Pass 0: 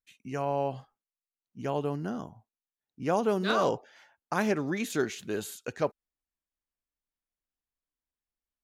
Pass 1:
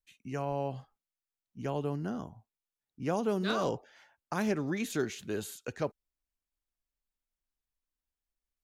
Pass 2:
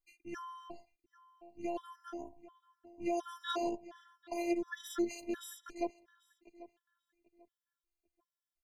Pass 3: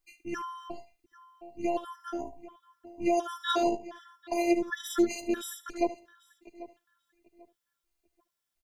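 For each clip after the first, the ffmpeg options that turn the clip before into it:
-filter_complex "[0:a]lowshelf=f=70:g=11.5,acrossover=split=390|3000[a][b][c];[b]acompressor=threshold=-35dB:ratio=1.5[d];[a][d][c]amix=inputs=3:normalize=0,volume=-2.5dB"
-filter_complex "[0:a]asplit=2[a][b];[b]adelay=791,lowpass=f=2.6k:p=1,volume=-17dB,asplit=2[c][d];[d]adelay=791,lowpass=f=2.6k:p=1,volume=0.27,asplit=2[e][f];[f]adelay=791,lowpass=f=2.6k:p=1,volume=0.27[g];[a][c][e][g]amix=inputs=4:normalize=0,afftfilt=real='hypot(re,im)*cos(PI*b)':imag='0':win_size=512:overlap=0.75,afftfilt=real='re*gt(sin(2*PI*1.4*pts/sr)*(1-2*mod(floor(b*sr/1024/1000),2)),0)':imag='im*gt(sin(2*PI*1.4*pts/sr)*(1-2*mod(floor(b*sr/1024/1000),2)),0)':win_size=1024:overlap=0.75,volume=2dB"
-af "aecho=1:1:74:0.158,volume=8.5dB"

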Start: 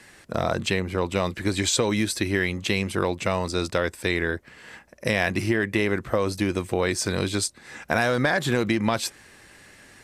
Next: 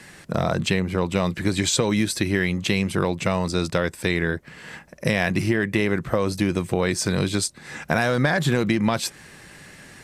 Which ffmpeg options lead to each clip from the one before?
-filter_complex "[0:a]equalizer=f=160:t=o:w=0.55:g=9.5,asplit=2[a][b];[b]acompressor=threshold=-30dB:ratio=6,volume=0dB[c];[a][c]amix=inputs=2:normalize=0,volume=-1.5dB"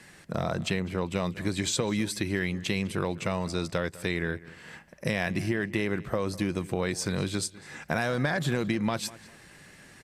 -filter_complex "[0:a]asplit=2[a][b];[b]adelay=201,lowpass=f=4.2k:p=1,volume=-19dB,asplit=2[c][d];[d]adelay=201,lowpass=f=4.2k:p=1,volume=0.28[e];[a][c][e]amix=inputs=3:normalize=0,volume=-7dB"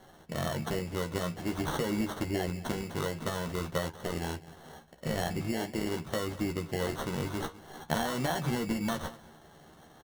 -filter_complex "[0:a]acrusher=samples=18:mix=1:aa=0.000001,flanger=delay=9.2:depth=8.9:regen=-65:speed=0.47:shape=sinusoidal,asplit=2[a][b];[b]adelay=13,volume=-6dB[c];[a][c]amix=inputs=2:normalize=0"

